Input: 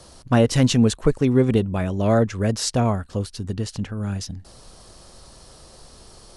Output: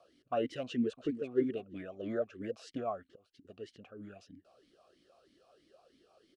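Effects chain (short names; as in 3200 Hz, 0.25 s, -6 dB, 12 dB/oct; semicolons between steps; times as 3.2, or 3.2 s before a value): 0.63–1.29 echo throw 0.34 s, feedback 20%, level -12 dB; 2.88–3.45 auto swell 0.374 s; vowel sweep a-i 3.1 Hz; gain -4.5 dB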